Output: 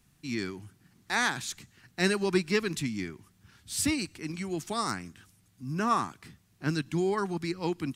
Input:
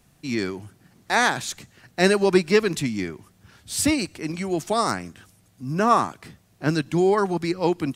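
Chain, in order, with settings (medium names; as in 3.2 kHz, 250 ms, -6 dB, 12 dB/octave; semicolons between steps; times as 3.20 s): peaking EQ 590 Hz -10 dB 0.98 oct; trim -5.5 dB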